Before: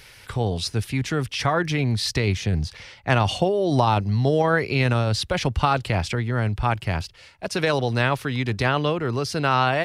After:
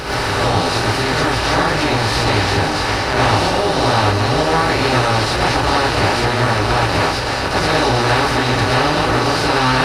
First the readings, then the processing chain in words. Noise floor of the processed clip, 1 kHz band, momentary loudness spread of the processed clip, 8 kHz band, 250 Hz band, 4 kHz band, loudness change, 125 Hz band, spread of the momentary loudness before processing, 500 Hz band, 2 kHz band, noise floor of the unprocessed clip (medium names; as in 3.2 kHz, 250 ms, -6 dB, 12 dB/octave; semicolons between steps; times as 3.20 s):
-19 dBFS, +9.5 dB, 2 LU, +10.0 dB, +6.0 dB, +10.5 dB, +7.5 dB, +3.5 dB, 7 LU, +6.5 dB, +9.5 dB, -48 dBFS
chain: spectral levelling over time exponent 0.2; gated-style reverb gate 150 ms rising, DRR -8 dB; trim -10.5 dB